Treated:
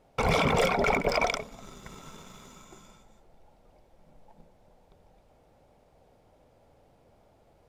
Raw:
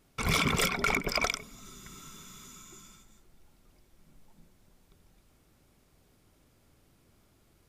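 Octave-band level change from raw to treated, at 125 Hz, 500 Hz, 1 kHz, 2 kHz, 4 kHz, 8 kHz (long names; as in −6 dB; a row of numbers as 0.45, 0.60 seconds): +2.5, +9.5, +5.5, +0.5, −2.0, −5.5 decibels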